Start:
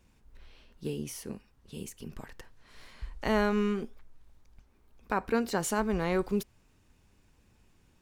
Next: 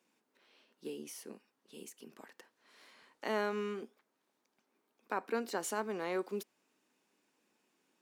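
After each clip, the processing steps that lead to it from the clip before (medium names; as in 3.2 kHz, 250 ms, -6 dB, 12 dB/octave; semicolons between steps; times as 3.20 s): high-pass 250 Hz 24 dB/octave; trim -6 dB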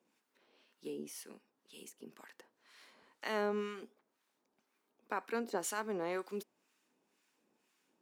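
harmonic tremolo 2 Hz, depth 70%, crossover 980 Hz; trim +2.5 dB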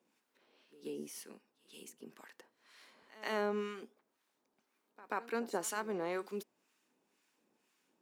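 pre-echo 134 ms -19 dB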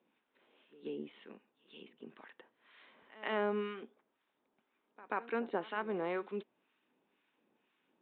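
resampled via 8 kHz; trim +1 dB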